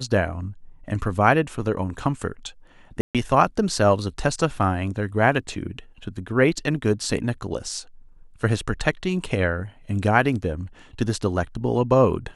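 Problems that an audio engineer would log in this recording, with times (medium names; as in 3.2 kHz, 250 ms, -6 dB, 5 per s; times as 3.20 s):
3.01–3.15 s: dropout 137 ms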